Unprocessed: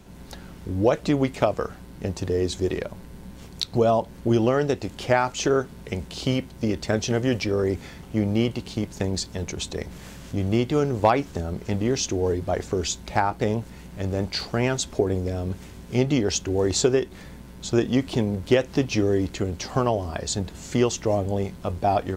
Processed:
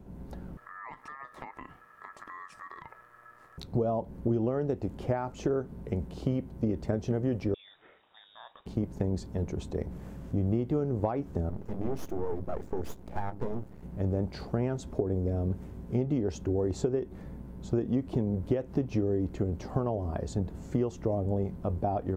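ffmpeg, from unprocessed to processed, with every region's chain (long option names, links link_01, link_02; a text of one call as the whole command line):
ffmpeg -i in.wav -filter_complex "[0:a]asettb=1/sr,asplit=3[link_01][link_02][link_03];[link_01]atrim=end=0.574[link_04];[link_02]atrim=start=0.57:end=3.58,asetpts=PTS-STARTPTS,afade=type=in:duration=0.004:curve=qsin,afade=type=out:start_time=3.006:duration=0.004:curve=qsin,lowshelf=frequency=120:width_type=q:width=1.5:gain=-14,acompressor=threshold=-28dB:ratio=6:attack=3.2:release=140:knee=1:detection=peak,aeval=exprs='val(0)*sin(2*PI*1500*n/s)':channel_layout=same[link_05];[link_03]atrim=start=3.576[link_06];[link_04][link_05]acrossfade=duration=0.004:curve1=hsin:curve2=qsin[link_07];[link_07][link_06]acrossfade=duration=0.004:curve1=qsin:curve2=hsin,asettb=1/sr,asplit=3[link_08][link_09][link_10];[link_08]atrim=end=7.544[link_11];[link_09]atrim=start=7.54:end=8.66,asetpts=PTS-STARTPTS,afade=type=in:duration=0.004:curve=qsin,afade=type=out:start_time=1.116:duration=0.004:curve=qsin,highpass=frequency=1100:poles=1,acompressor=threshold=-37dB:ratio=1.5:attack=3.2:release=140:knee=1:detection=peak,lowpass=frequency=3300:width_type=q:width=0.5098,lowpass=frequency=3300:width_type=q:width=0.6013,lowpass=frequency=3300:width_type=q:width=0.9,lowpass=frequency=3300:width_type=q:width=2.563,afreqshift=-3900[link_12];[link_10]atrim=start=8.656[link_13];[link_11][link_12]acrossfade=duration=0.004:curve1=hsin:curve2=qsin[link_14];[link_14][link_13]acrossfade=duration=0.004:curve1=qsin:curve2=hsin,asettb=1/sr,asplit=3[link_15][link_16][link_17];[link_15]atrim=end=11.494[link_18];[link_16]atrim=start=11.49:end=13.83,asetpts=PTS-STARTPTS,afade=type=in:duration=0.004:curve=qsin,afade=type=out:start_time=2.336:duration=0.004:curve=qsin,highpass=63,bandreject=frequency=50:width_type=h:width=6,bandreject=frequency=100:width_type=h:width=6,bandreject=frequency=150:width_type=h:width=6,bandreject=frequency=200:width_type=h:width=6,bandreject=frequency=250:width_type=h:width=6,bandreject=frequency=300:width_type=h:width=6,aeval=exprs='max(val(0),0)':channel_layout=same[link_19];[link_17]atrim=start=13.826[link_20];[link_18][link_19]acrossfade=duration=0.004:curve1=hsin:curve2=qsin[link_21];[link_21][link_20]acrossfade=duration=0.004:curve1=qsin:curve2=hsin,highshelf=frequency=2200:gain=-11,acompressor=threshold=-24dB:ratio=5,equalizer=frequency=3900:width=0.33:gain=-12" out.wav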